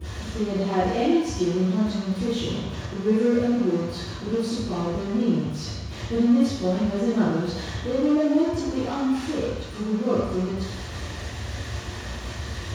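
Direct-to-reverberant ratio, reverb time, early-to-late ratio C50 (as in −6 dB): −16.5 dB, 1.0 s, −3.0 dB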